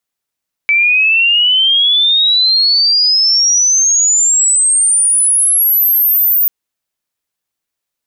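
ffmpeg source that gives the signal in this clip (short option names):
-f lavfi -i "aevalsrc='pow(10,(-7.5-0.5*t/5.79)/20)*sin(2*PI*2300*5.79/log(15000/2300)*(exp(log(15000/2300)*t/5.79)-1))':d=5.79:s=44100"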